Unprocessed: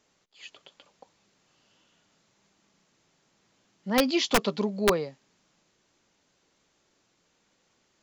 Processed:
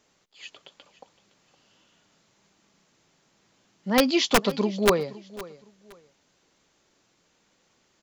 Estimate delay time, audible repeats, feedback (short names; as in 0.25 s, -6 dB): 0.514 s, 2, 25%